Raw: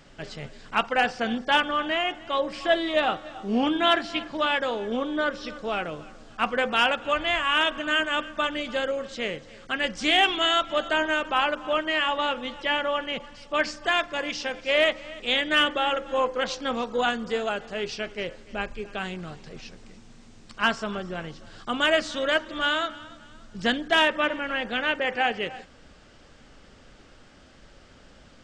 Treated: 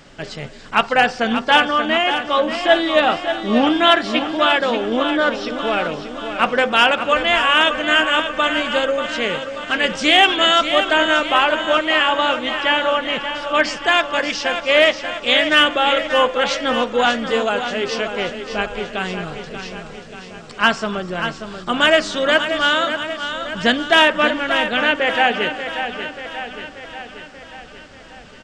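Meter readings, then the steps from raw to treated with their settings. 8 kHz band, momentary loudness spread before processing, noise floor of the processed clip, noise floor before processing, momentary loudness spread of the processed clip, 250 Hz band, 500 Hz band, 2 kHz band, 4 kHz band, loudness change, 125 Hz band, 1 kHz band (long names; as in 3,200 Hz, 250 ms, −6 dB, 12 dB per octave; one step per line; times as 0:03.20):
+8.5 dB, 12 LU, −39 dBFS, −52 dBFS, 15 LU, +8.0 dB, +8.5 dB, +8.5 dB, +9.0 dB, +8.5 dB, +7.5 dB, +8.5 dB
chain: low-shelf EQ 86 Hz −5.5 dB
on a send: repeating echo 585 ms, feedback 59%, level −9 dB
on the sum: level +8 dB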